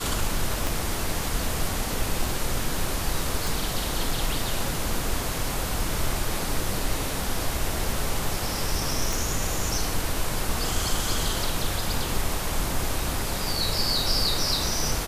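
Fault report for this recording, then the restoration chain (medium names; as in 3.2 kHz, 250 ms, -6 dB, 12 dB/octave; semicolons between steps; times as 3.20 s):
0.67 s: pop
3.47 s: pop
9.13 s: pop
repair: de-click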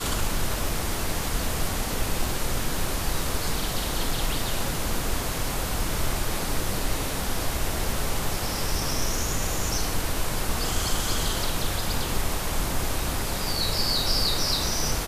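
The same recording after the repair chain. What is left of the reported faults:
0.67 s: pop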